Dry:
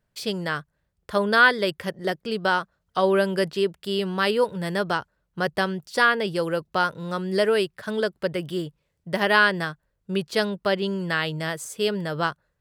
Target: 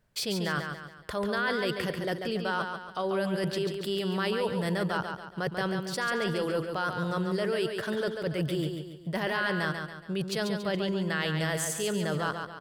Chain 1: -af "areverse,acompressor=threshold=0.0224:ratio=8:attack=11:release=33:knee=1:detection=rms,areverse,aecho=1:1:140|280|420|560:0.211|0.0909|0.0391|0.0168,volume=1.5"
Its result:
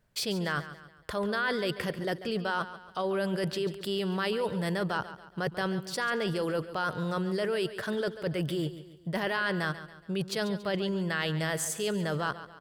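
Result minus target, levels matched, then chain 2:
echo-to-direct -7.5 dB
-af "areverse,acompressor=threshold=0.0224:ratio=8:attack=11:release=33:knee=1:detection=rms,areverse,aecho=1:1:140|280|420|560|700:0.501|0.216|0.0927|0.0398|0.0171,volume=1.5"

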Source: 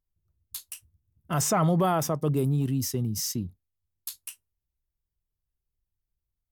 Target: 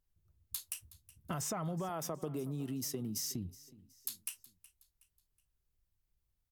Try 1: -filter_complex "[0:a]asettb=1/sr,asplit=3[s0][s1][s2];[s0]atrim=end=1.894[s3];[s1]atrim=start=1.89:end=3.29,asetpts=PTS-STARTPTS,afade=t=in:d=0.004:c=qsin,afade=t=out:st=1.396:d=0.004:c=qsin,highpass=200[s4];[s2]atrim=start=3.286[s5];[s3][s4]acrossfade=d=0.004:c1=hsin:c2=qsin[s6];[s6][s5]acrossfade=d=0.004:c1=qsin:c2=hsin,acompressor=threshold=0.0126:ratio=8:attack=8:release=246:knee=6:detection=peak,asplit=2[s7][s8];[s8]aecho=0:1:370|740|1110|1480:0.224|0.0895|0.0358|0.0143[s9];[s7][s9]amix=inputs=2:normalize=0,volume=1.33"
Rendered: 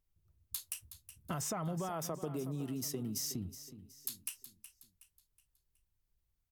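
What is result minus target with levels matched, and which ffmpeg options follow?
echo-to-direct +6.5 dB
-filter_complex "[0:a]asettb=1/sr,asplit=3[s0][s1][s2];[s0]atrim=end=1.894[s3];[s1]atrim=start=1.89:end=3.29,asetpts=PTS-STARTPTS,afade=t=in:d=0.004:c=qsin,afade=t=out:st=1.396:d=0.004:c=qsin,highpass=200[s4];[s2]atrim=start=3.286[s5];[s3][s4]acrossfade=d=0.004:c1=hsin:c2=qsin[s6];[s6][s5]acrossfade=d=0.004:c1=qsin:c2=hsin,acompressor=threshold=0.0126:ratio=8:attack=8:release=246:knee=6:detection=peak,asplit=2[s7][s8];[s8]aecho=0:1:370|740|1110:0.106|0.0424|0.0169[s9];[s7][s9]amix=inputs=2:normalize=0,volume=1.33"

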